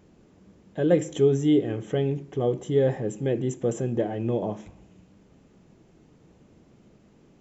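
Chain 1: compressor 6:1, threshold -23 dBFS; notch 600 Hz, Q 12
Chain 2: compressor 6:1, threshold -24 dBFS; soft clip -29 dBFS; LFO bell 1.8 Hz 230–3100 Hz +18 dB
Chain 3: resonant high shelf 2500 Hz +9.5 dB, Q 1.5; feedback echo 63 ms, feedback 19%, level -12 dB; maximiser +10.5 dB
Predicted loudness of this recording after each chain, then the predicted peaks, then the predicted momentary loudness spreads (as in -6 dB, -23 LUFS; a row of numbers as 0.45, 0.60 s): -30.0, -28.0, -15.0 LUFS; -15.0, -11.0, -1.0 dBFS; 4, 8, 6 LU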